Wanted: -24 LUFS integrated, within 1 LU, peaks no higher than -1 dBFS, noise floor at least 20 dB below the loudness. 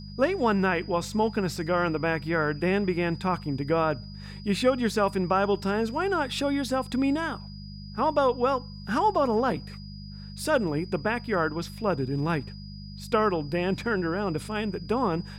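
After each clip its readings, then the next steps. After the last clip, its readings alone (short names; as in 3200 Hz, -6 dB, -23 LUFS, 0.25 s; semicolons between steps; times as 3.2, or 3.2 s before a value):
hum 50 Hz; harmonics up to 200 Hz; hum level -39 dBFS; steady tone 4900 Hz; tone level -48 dBFS; loudness -27.0 LUFS; peak -10.5 dBFS; loudness target -24.0 LUFS
-> de-hum 50 Hz, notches 4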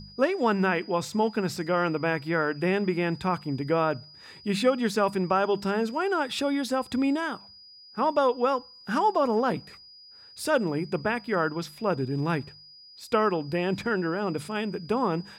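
hum none; steady tone 4900 Hz; tone level -48 dBFS
-> notch 4900 Hz, Q 30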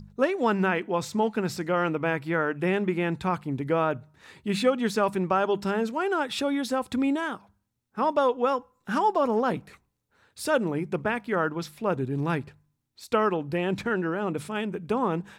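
steady tone none; loudness -27.0 LUFS; peak -10.5 dBFS; loudness target -24.0 LUFS
-> gain +3 dB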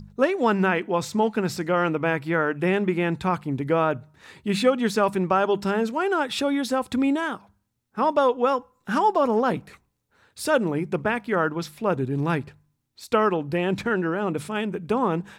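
loudness -24.0 LUFS; peak -7.5 dBFS; noise floor -73 dBFS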